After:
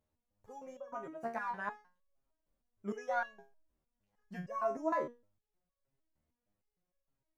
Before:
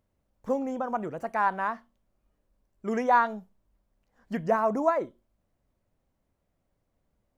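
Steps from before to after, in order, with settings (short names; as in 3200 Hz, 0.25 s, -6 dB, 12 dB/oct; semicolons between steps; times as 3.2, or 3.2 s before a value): dynamic EQ 5800 Hz, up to +7 dB, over -60 dBFS, Q 2.6; stepped resonator 6.5 Hz 77–560 Hz; gain +1 dB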